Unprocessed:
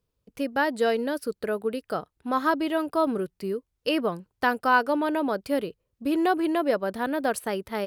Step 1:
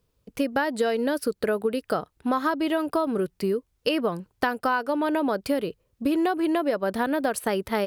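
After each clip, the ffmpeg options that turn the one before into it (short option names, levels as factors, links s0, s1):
-af "acompressor=threshold=0.0398:ratio=10,volume=2.37"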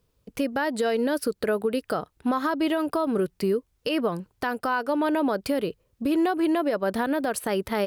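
-af "alimiter=limit=0.133:level=0:latency=1:release=66,volume=1.19"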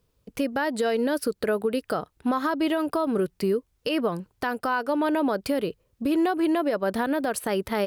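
-af anull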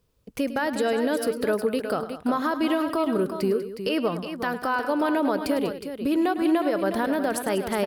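-af "aecho=1:1:104|194|363:0.211|0.2|0.355"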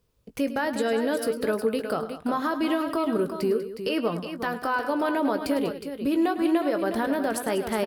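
-filter_complex "[0:a]asplit=2[s0][s1];[s1]adelay=18,volume=0.299[s2];[s0][s2]amix=inputs=2:normalize=0,volume=0.841"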